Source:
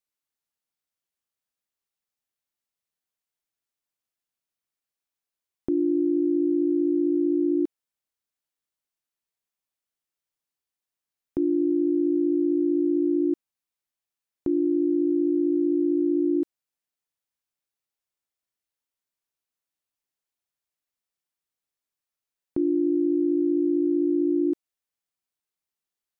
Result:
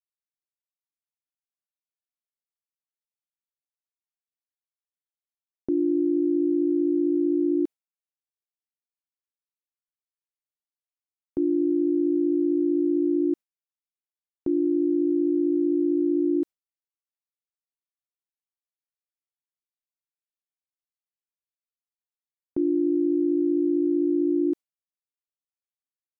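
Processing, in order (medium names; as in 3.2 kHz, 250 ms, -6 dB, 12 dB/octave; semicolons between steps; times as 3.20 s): gate with hold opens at -18 dBFS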